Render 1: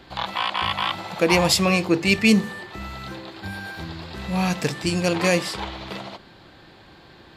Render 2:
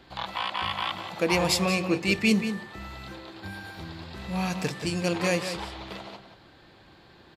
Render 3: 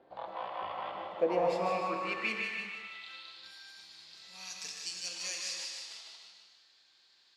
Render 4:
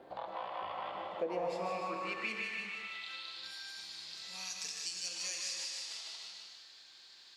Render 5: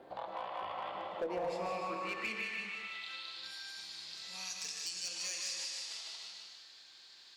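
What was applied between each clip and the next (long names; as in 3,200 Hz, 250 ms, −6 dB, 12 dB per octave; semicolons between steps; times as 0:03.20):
slap from a distant wall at 31 metres, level −9 dB; level −6 dB
band-pass filter sweep 570 Hz → 5,700 Hz, 0:01.34–0:03.54; feedback echo with a high-pass in the loop 152 ms, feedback 46%, high-pass 1,000 Hz, level −5 dB; reverb whose tail is shaped and stops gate 360 ms flat, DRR 3 dB
parametric band 8,100 Hz +3.5 dB 1.6 octaves; downward compressor 2 to 1, threshold −52 dBFS, peak gain reduction 15.5 dB; level +7 dB
asymmetric clip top −31.5 dBFS, bottom −30 dBFS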